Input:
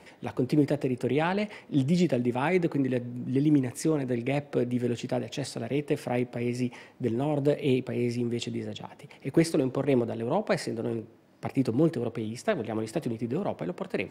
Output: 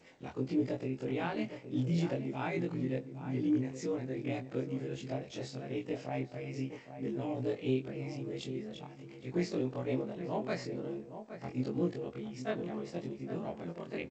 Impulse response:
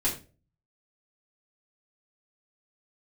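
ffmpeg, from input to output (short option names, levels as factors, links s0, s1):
-filter_complex "[0:a]afftfilt=real='re':imag='-im':win_size=2048:overlap=0.75,asplit=2[s0][s1];[s1]adelay=816.3,volume=0.316,highshelf=f=4000:g=-18.4[s2];[s0][s2]amix=inputs=2:normalize=0,volume=0.596" -ar 16000 -c:a g722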